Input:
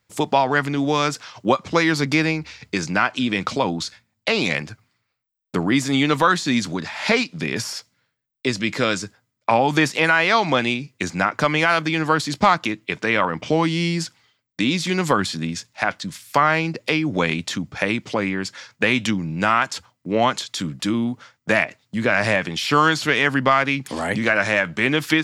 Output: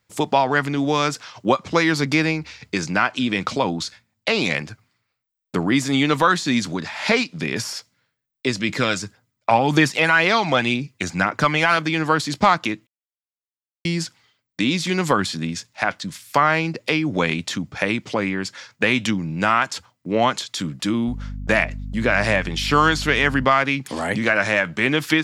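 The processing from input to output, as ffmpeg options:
ffmpeg -i in.wav -filter_complex "[0:a]asettb=1/sr,asplit=3[link_01][link_02][link_03];[link_01]atrim=end=8.694[link_04];[link_02]atrim=start=8.69:end=11.77,asetpts=PTS-STARTPTS,afade=type=in:duration=0.004:curve=qsin,afade=type=out:start_time=3.076:duration=0.004:curve=qsin,aphaser=in_gain=1:out_gain=1:delay=1.6:decay=0.36:speed=1.9:type=triangular[link_05];[link_03]atrim=start=11.766[link_06];[link_04][link_05]acrossfade=duration=0.004:curve1=hsin:curve2=qsin[link_07];[link_07][link_06]acrossfade=duration=0.004:curve1=qsin:curve2=hsin,asettb=1/sr,asplit=3[link_08][link_09][link_10];[link_08]atrim=end=21.084[link_11];[link_09]atrim=start=21.08:end=23.45,asetpts=PTS-STARTPTS,afade=type=in:duration=0.004:curve=qsin,afade=type=out:start_time=2.366:duration=0.004:curve=qsin,aeval=exprs='val(0)+0.0355*(sin(2*PI*50*n/s)+sin(2*PI*2*50*n/s)/2+sin(2*PI*3*50*n/s)/3+sin(2*PI*4*50*n/s)/4+sin(2*PI*5*50*n/s)/5)':channel_layout=same[link_12];[link_10]atrim=start=23.446[link_13];[link_11][link_12]acrossfade=duration=0.004:curve1=hsin:curve2=qsin[link_14];[link_14][link_13]acrossfade=duration=0.004:curve1=qsin:curve2=hsin,asplit=3[link_15][link_16][link_17];[link_15]atrim=end=12.87,asetpts=PTS-STARTPTS,afade=type=out:start_time=12.866:duration=0.004:curve=hsin[link_18];[link_16]atrim=start=12.87:end=13.85,asetpts=PTS-STARTPTS,volume=0[link_19];[link_17]atrim=start=13.85,asetpts=PTS-STARTPTS,afade=type=in:duration=0.004:curve=hsin[link_20];[link_18][link_19][link_20]concat=n=3:v=0:a=1" out.wav

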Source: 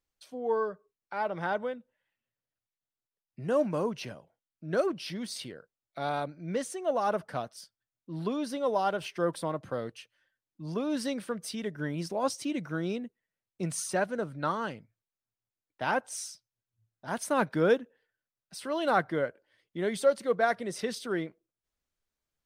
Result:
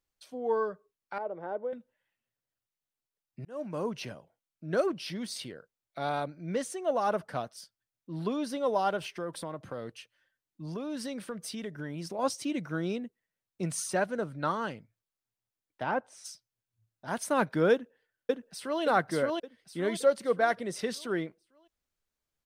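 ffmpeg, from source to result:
ffmpeg -i in.wav -filter_complex "[0:a]asettb=1/sr,asplit=3[link_01][link_02][link_03];[link_01]atrim=end=1.184[link_04];[link_02]atrim=start=1.18:end=1.73,asetpts=PTS-STARTPTS,afade=type=in:duration=0.004:curve=qsin,afade=type=out:start_time=0.546:duration=0.004:curve=qsin,bandpass=frequency=460:width_type=q:width=1.7[link_05];[link_03]atrim=start=1.726[link_06];[link_04][link_05]acrossfade=duration=0.004:curve1=hsin:curve2=qsin[link_07];[link_07][link_06]acrossfade=duration=0.004:curve1=qsin:curve2=hsin,asettb=1/sr,asplit=3[link_08][link_09][link_10];[link_08]atrim=end=9.034[link_11];[link_09]atrim=start=9.03:end=12.19,asetpts=PTS-STARTPTS,afade=type=in:duration=0.004:curve=qsin,afade=type=out:start_time=3.156:duration=0.004:curve=qsin,acompressor=threshold=-35dB:ratio=2.5:attack=3.2:release=140:knee=1:detection=peak[link_12];[link_10]atrim=start=12.186[link_13];[link_11][link_12]acrossfade=duration=0.004:curve1=hsin:curve2=qsin[link_14];[link_14][link_13]acrossfade=duration=0.004:curve1=qsin:curve2=hsin,asplit=3[link_15][link_16][link_17];[link_15]afade=type=out:start_time=15.82:duration=0.02[link_18];[link_16]lowpass=frequency=1200:poles=1,afade=type=in:start_time=15.82:duration=0.02,afade=type=out:start_time=16.24:duration=0.02[link_19];[link_17]afade=type=in:start_time=16.24:duration=0.02[link_20];[link_18][link_19][link_20]amix=inputs=3:normalize=0,asplit=2[link_21][link_22];[link_22]afade=type=in:start_time=17.72:duration=0.01,afade=type=out:start_time=18.82:duration=0.01,aecho=0:1:570|1140|1710|2280|2850:0.891251|0.3565|0.1426|0.0570401|0.022816[link_23];[link_21][link_23]amix=inputs=2:normalize=0,asplit=2[link_24][link_25];[link_24]atrim=end=3.45,asetpts=PTS-STARTPTS,afade=type=out:start_time=3.446:duration=0.004:curve=hsin[link_26];[link_25]atrim=start=3.45,asetpts=PTS-STARTPTS,afade=type=in:duration=0.52[link_27];[link_26][link_27]concat=n=2:v=0:a=1" out.wav

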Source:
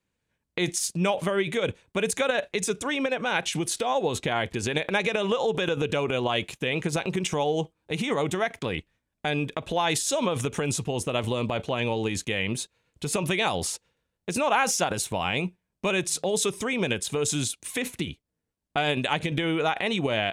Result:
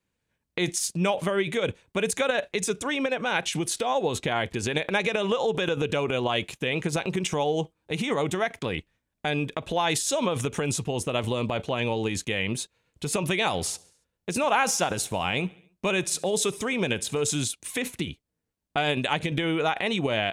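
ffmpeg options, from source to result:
ffmpeg -i in.wav -filter_complex "[0:a]asettb=1/sr,asplit=3[link_01][link_02][link_03];[link_01]atrim=end=13.364[link_04];[link_02]atrim=start=13.36:end=17.3,asetpts=PTS-STARTPTS,afade=type=in:duration=0.004:curve=qsin,afade=type=out:start_time=3.936:duration=0.004:curve=qsin,aecho=1:1:70|140|210|280:0.0668|0.0374|0.021|0.0117,atrim=end_sample=173754[link_05];[link_03]atrim=start=17.296[link_06];[link_04][link_05]acrossfade=duration=0.004:curve1=hsin:curve2=qsin[link_07];[link_07][link_06]acrossfade=duration=0.004:curve1=qsin:curve2=hsin" out.wav

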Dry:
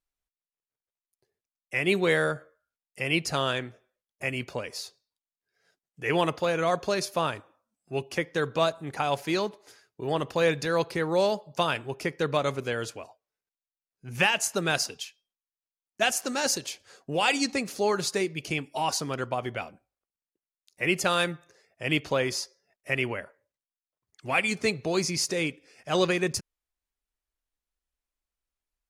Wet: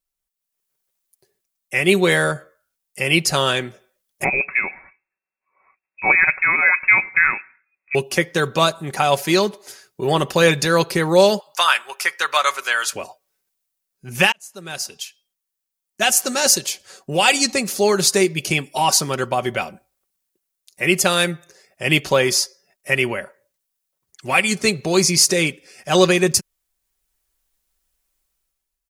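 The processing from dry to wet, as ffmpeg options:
ffmpeg -i in.wav -filter_complex "[0:a]asettb=1/sr,asplit=3[link_01][link_02][link_03];[link_01]atrim=end=4.244[link_04];[link_02]atrim=start=4.24:end=7.95,asetpts=PTS-STARTPTS,afade=type=in:duration=0.004:curve=qsin,afade=type=out:start_time=3.706:duration=0.004:curve=qsin,lowpass=frequency=2300:width_type=q:width=0.5098,lowpass=frequency=2300:width_type=q:width=0.6013,lowpass=frequency=2300:width_type=q:width=0.9,lowpass=frequency=2300:width_type=q:width=2.563,afreqshift=-2700[link_05];[link_03]atrim=start=7.946[link_06];[link_04][link_05]acrossfade=duration=0.004:curve1=hsin:curve2=qsin[link_07];[link_07][link_06]acrossfade=duration=0.004:curve1=qsin:curve2=hsin,asettb=1/sr,asplit=3[link_08][link_09][link_10];[link_08]atrim=end=11.404[link_11];[link_09]atrim=start=11.4:end=12.93,asetpts=PTS-STARTPTS,afade=type=in:duration=0.004:curve=qsin,afade=type=out:start_time=1.526:duration=0.004:curve=qsin,highpass=frequency=1200:width_type=q:width=1.7[link_12];[link_10]atrim=start=12.926[link_13];[link_11][link_12]acrossfade=duration=0.004:curve1=hsin:curve2=qsin[link_14];[link_14][link_13]acrossfade=duration=0.004:curve1=qsin:curve2=hsin,asplit=2[link_15][link_16];[link_15]atrim=end=14.32,asetpts=PTS-STARTPTS,afade=type=out:start_time=14.316:duration=0.004:curve=hsin[link_17];[link_16]atrim=start=14.32,asetpts=PTS-STARTPTS,afade=type=in:duration=1.96[link_18];[link_17][link_18]concat=n=2:v=0:a=1,highshelf=frequency=6300:gain=11,aecho=1:1:5.3:0.39,dynaudnorm=framelen=120:gausssize=9:maxgain=11.5dB" out.wav

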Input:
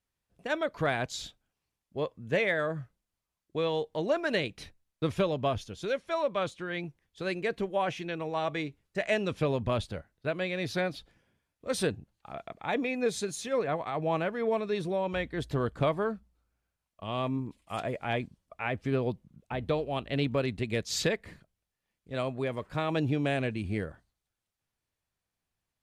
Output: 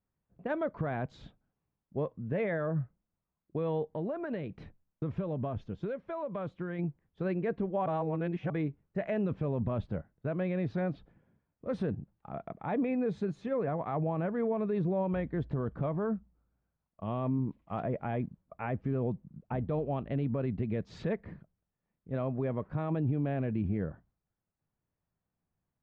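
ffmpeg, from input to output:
ffmpeg -i in.wav -filter_complex "[0:a]asettb=1/sr,asplit=3[link_01][link_02][link_03];[link_01]atrim=end=3.864[link_04];[link_02]atrim=start=3.86:end=6.79,asetpts=PTS-STARTPTS,afade=type=in:duration=0.004:curve=qsin,afade=type=out:start_time=2.926:duration=0.004:curve=qsin,acompressor=threshold=-34dB:ratio=4:attack=3.2:release=140:knee=1:detection=peak[link_05];[link_03]atrim=start=6.786[link_06];[link_04][link_05]acrossfade=duration=0.004:curve1=hsin:curve2=qsin[link_07];[link_07][link_06]acrossfade=duration=0.004:curve1=qsin:curve2=hsin,asplit=3[link_08][link_09][link_10];[link_08]atrim=end=7.862[link_11];[link_09]atrim=start=7.858:end=8.502,asetpts=PTS-STARTPTS,areverse[link_12];[link_10]atrim=start=8.498[link_13];[link_11][link_12]acrossfade=duration=0.004:curve1=hsin:curve2=hsin[link_14];[link_14][link_13]acrossfade=duration=0.004:curve1=hsin:curve2=hsin,lowpass=1300,equalizer=frequency=170:width_type=o:width=1.3:gain=7.5,alimiter=limit=-23.5dB:level=0:latency=1:release=45" out.wav

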